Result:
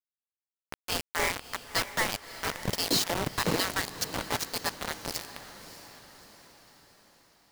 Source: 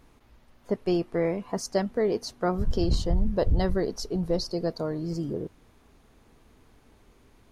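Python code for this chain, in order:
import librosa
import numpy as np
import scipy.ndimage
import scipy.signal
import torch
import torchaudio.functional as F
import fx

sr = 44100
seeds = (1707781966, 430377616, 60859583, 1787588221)

y = fx.fade_in_head(x, sr, length_s=1.49)
y = fx.spec_gate(y, sr, threshold_db=-20, keep='weak')
y = fx.rider(y, sr, range_db=3, speed_s=2.0)
y = fx.env_lowpass(y, sr, base_hz=440.0, full_db=-39.0)
y = fx.quant_companded(y, sr, bits=2)
y = fx.echo_diffused(y, sr, ms=617, feedback_pct=51, wet_db=-13.0)
y = y * librosa.db_to_amplitude(4.0)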